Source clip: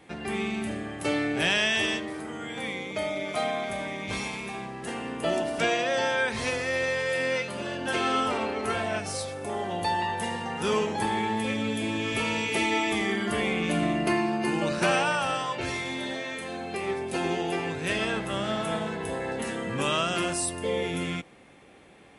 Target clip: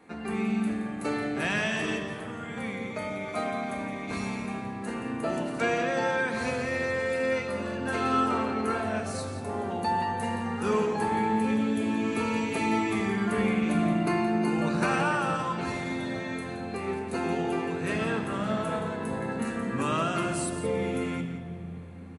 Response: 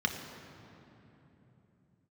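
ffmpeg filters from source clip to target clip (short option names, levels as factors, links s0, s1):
-filter_complex "[0:a]aecho=1:1:172:0.266,asplit=2[s0][s1];[1:a]atrim=start_sample=2205,lowshelf=f=180:g=8[s2];[s1][s2]afir=irnorm=-1:irlink=0,volume=0.299[s3];[s0][s3]amix=inputs=2:normalize=0,volume=0.668"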